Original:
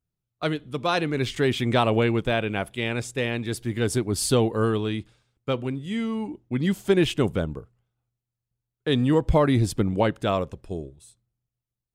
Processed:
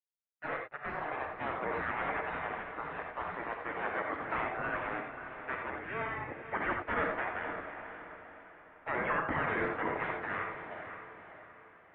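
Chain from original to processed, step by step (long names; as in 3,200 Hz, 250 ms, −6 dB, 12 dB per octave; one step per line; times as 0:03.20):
0:00.66–0:01.63: low-shelf EQ 290 Hz −7 dB
gate on every frequency bin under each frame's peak −30 dB weak
leveller curve on the samples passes 5
single-sideband voice off tune −240 Hz 330–2,100 Hz
feedback delay with all-pass diffusion 521 ms, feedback 43%, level −9 dB
reverb whose tail is shaped and stops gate 110 ms rising, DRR 3 dB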